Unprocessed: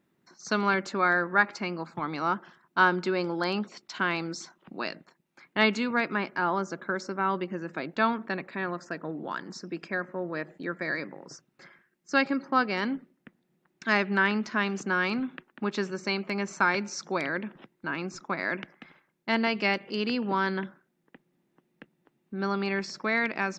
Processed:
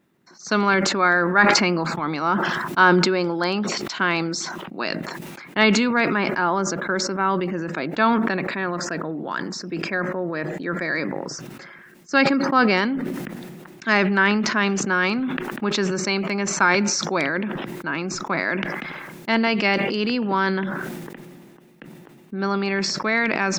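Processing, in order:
level that may fall only so fast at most 26 dB per second
level +5.5 dB

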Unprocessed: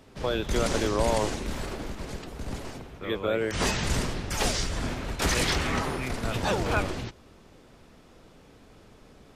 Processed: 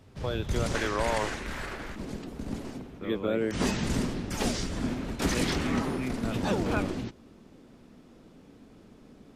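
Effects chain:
parametric band 99 Hz +11 dB 1.4 octaves, from 0:00.75 1,700 Hz, from 0:01.96 240 Hz
level −5.5 dB

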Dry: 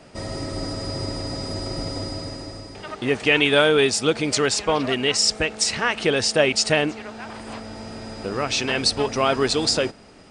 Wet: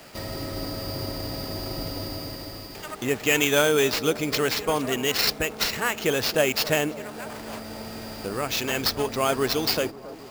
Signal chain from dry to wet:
sample-rate reduction 9,600 Hz, jitter 0%
bucket-brigade delay 271 ms, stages 2,048, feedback 72%, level −17 dB
one half of a high-frequency compander encoder only
level −3.5 dB

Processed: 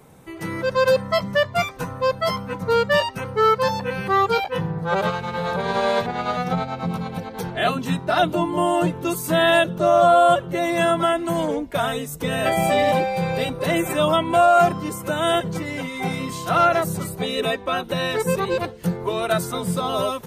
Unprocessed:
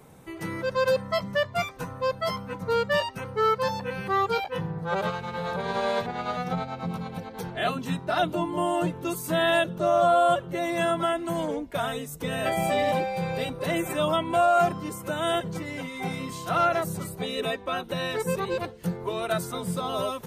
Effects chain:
automatic gain control gain up to 4 dB
level +2 dB

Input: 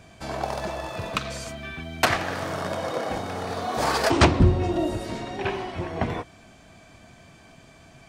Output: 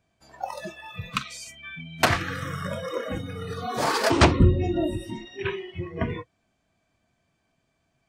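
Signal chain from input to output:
noise reduction from a noise print of the clip's start 22 dB
0:01.47–0:03.67: parametric band 91 Hz +6 dB 2.3 octaves

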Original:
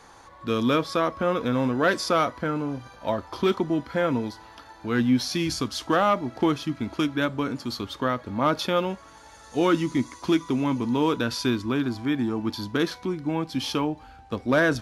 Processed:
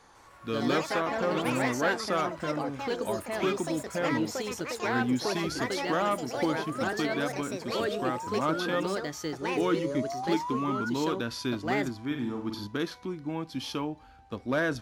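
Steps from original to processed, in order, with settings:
0:09.56–0:10.90: sound drawn into the spectrogram rise 400–1,500 Hz −28 dBFS
delay with pitch and tempo change per echo 152 ms, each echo +4 semitones, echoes 3
0:12.06–0:12.67: flutter between parallel walls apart 8.4 metres, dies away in 0.48 s
level −7 dB

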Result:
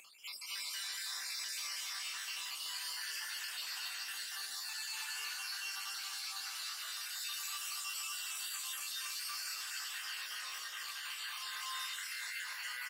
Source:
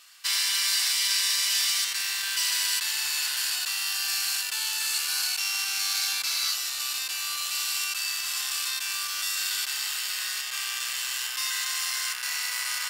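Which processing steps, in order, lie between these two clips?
time-frequency cells dropped at random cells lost 68%
surface crackle 360 per second −60 dBFS
Butterworth high-pass 190 Hz 48 dB per octave
high-shelf EQ 2,900 Hz −10.5 dB, from 0:06.93 −2.5 dB, from 0:09.28 −10 dB
echo with shifted repeats 195 ms, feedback 36%, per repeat +130 Hz, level −10 dB
brickwall limiter −31 dBFS, peak gain reduction 8 dB
double-tracking delay 20 ms −12 dB
convolution reverb RT60 0.90 s, pre-delay 218 ms, DRR −4.5 dB
upward compression, threshold −44 dBFS
parametric band 350 Hz −6.5 dB 2.4 octaves
level −5.5 dB

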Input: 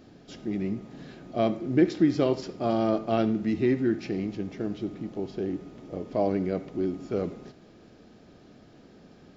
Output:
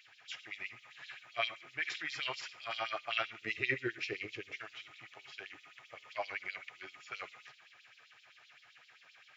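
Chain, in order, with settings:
drawn EQ curve 130 Hz 0 dB, 200 Hz −27 dB, 880 Hz −23 dB, 2,400 Hz −6 dB, 4,500 Hz −19 dB, 7,300 Hz −16 dB
auto-filter high-pass sine 7.7 Hz 810–4,100 Hz
0:01.55–0:02.77: transient designer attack −7 dB, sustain +1 dB
0:03.41–0:04.59: low shelf with overshoot 600 Hz +10.5 dB, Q 3
level +13.5 dB

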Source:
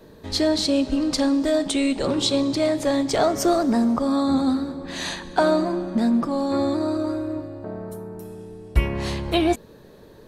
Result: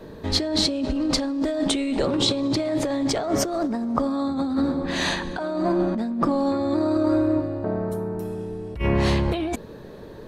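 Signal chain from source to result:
high-shelf EQ 4,700 Hz −9.5 dB
compressor whose output falls as the input rises −26 dBFS, ratio −1
level +3 dB

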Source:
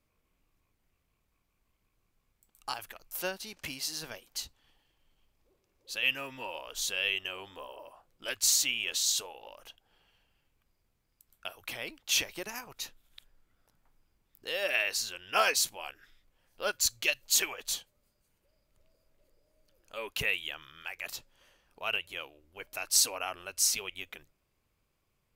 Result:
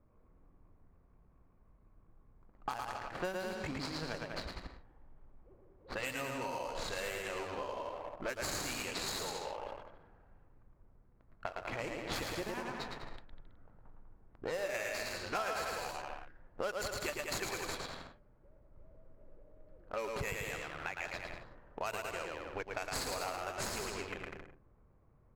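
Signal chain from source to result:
running median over 15 samples
notch filter 3,600 Hz, Q 26
on a send: bouncing-ball delay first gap 110 ms, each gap 0.8×, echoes 5
on the sum: low-pass that shuts in the quiet parts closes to 1,300 Hz, open at −36 dBFS
low-shelf EQ 180 Hz +3 dB
leveller curve on the samples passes 1
downward compressor 5 to 1, threshold −48 dBFS, peak gain reduction 23.5 dB
level +10.5 dB

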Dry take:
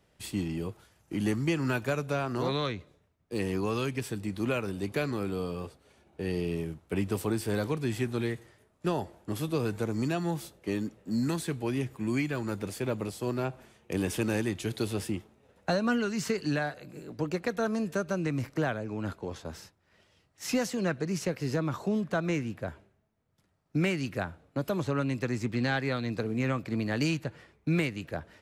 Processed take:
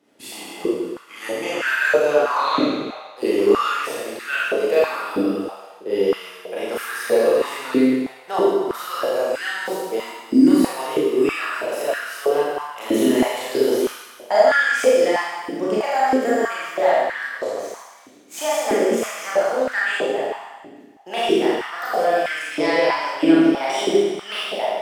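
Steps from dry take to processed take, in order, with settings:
gliding playback speed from 103% → 126%
four-comb reverb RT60 1.5 s, combs from 27 ms, DRR −8 dB
high-pass on a step sequencer 3.1 Hz 290–1,600 Hz

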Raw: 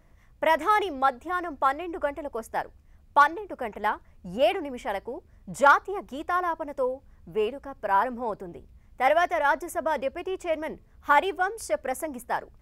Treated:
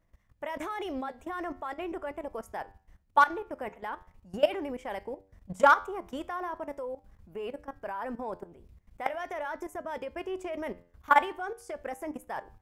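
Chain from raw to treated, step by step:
output level in coarse steps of 18 dB
flanger 0.41 Hz, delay 9.7 ms, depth 2 ms, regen +85%
level +5.5 dB

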